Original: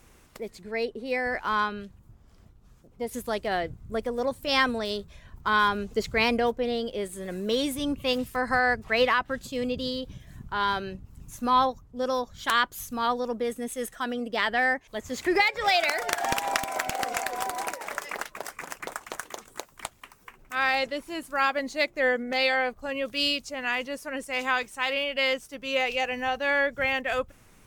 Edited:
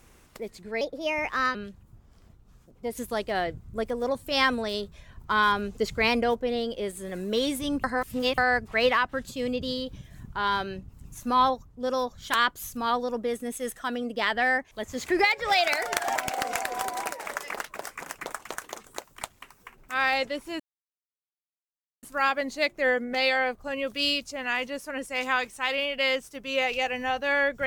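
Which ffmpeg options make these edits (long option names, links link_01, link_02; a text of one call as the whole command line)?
ffmpeg -i in.wav -filter_complex "[0:a]asplit=7[link_01][link_02][link_03][link_04][link_05][link_06][link_07];[link_01]atrim=end=0.814[link_08];[link_02]atrim=start=0.81:end=1.71,asetpts=PTS-STARTPTS,asetrate=53802,aresample=44100[link_09];[link_03]atrim=start=1.706:end=8.002[link_10];[link_04]atrim=start=7.998:end=8.542,asetpts=PTS-STARTPTS,areverse[link_11];[link_05]atrim=start=8.538:end=16.322[link_12];[link_06]atrim=start=16.768:end=21.21,asetpts=PTS-STARTPTS,afade=type=out:start_time=4.438:duration=0.004:curve=hsin,apad=pad_dur=1.43[link_13];[link_07]atrim=start=21.21,asetpts=PTS-STARTPTS,afade=type=in:duration=0.004:curve=hsin[link_14];[link_08][link_09]acrossfade=duration=0.004:curve1=hsin:curve2=hsin[link_15];[link_15][link_10]acrossfade=duration=0.004:curve1=hsin:curve2=hsin[link_16];[link_16][link_11]acrossfade=duration=0.004:curve1=hsin:curve2=hsin[link_17];[link_17][link_12]acrossfade=duration=0.004:curve1=hsin:curve2=hsin[link_18];[link_13][link_14]concat=n=2:v=0:a=1[link_19];[link_18][link_19]acrossfade=duration=0.004:curve1=hsin:curve2=hsin" out.wav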